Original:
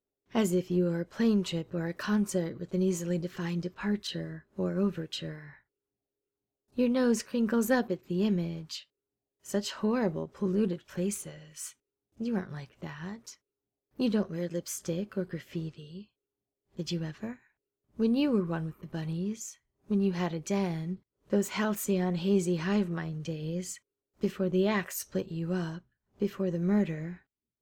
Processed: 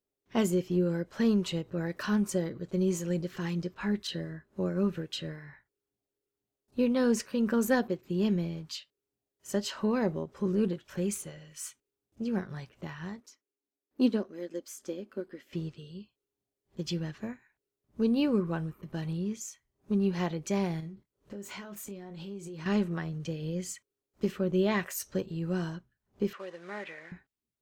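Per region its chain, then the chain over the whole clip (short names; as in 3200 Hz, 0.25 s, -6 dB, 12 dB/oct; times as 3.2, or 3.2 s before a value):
13.2–15.53 resonant low shelf 200 Hz -8 dB, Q 3 + upward expander, over -36 dBFS
20.8–22.66 compressor 12:1, threshold -39 dBFS + doubler 25 ms -9.5 dB
26.33–27.12 CVSD 64 kbps + BPF 750–2700 Hz + high shelf 2100 Hz +8 dB
whole clip: dry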